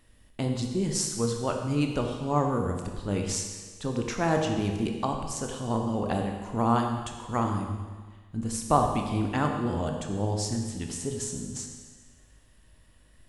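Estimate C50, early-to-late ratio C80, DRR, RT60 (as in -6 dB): 4.5 dB, 6.0 dB, 2.5 dB, 1.5 s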